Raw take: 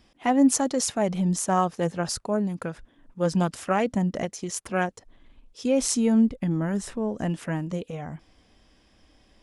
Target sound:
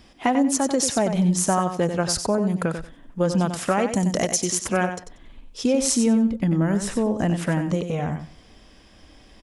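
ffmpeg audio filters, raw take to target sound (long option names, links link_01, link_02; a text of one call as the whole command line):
ffmpeg -i in.wav -filter_complex "[0:a]asettb=1/sr,asplit=3[link_01][link_02][link_03];[link_01]atrim=end=3.924[link_04];[link_02]atrim=start=3.92:end=4.5,asetpts=PTS-STARTPTS,afade=type=in:duration=0.004:curve=qsin,afade=type=out:start_time=0.576:duration=0.004:curve=qsin,bass=frequency=250:gain=-3,treble=frequency=4000:gain=13[link_05];[link_03]atrim=start=4.496[link_06];[link_04][link_05]acrossfade=duration=0.004:curve1=hsin:curve2=qsin[link_07];[link_07][link_06]acrossfade=duration=0.004:curve1=qsin:curve2=hsin,acompressor=threshold=-27dB:ratio=4,aecho=1:1:93|186|279:0.376|0.0639|0.0109,volume=8.5dB" out.wav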